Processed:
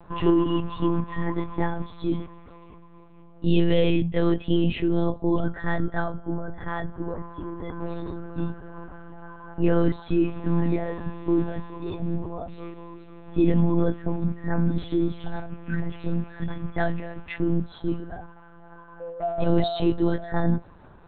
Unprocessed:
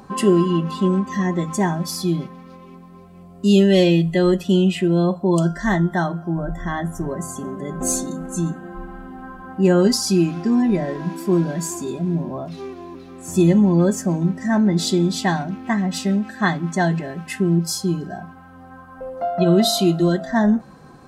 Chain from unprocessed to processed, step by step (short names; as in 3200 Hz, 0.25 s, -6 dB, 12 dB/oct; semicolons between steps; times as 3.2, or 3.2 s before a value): 14.24–16.77 median-filter separation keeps harmonic; low shelf 110 Hz -3.5 dB; monotone LPC vocoder at 8 kHz 170 Hz; gain -4 dB